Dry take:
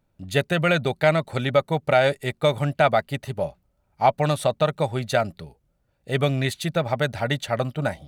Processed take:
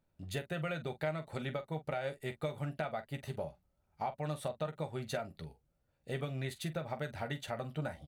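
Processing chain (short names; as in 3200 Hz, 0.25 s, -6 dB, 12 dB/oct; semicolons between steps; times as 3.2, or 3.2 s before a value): dynamic EQ 5100 Hz, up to -4 dB, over -41 dBFS, Q 0.75; compressor 6:1, threshold -27 dBFS, peak gain reduction 14 dB; on a send: early reflections 13 ms -8.5 dB, 45 ms -13 dB; on the sum: gain -8.5 dB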